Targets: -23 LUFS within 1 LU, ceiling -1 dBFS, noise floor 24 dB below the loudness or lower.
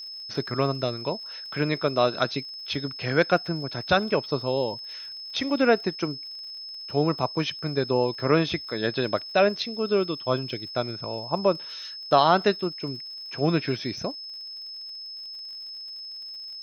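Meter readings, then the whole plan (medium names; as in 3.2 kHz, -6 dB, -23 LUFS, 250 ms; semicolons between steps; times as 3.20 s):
tick rate 61 per s; steady tone 5.2 kHz; tone level -36 dBFS; loudness -26.5 LUFS; peak level -5.5 dBFS; loudness target -23.0 LUFS
-> de-click; band-stop 5.2 kHz, Q 30; trim +3.5 dB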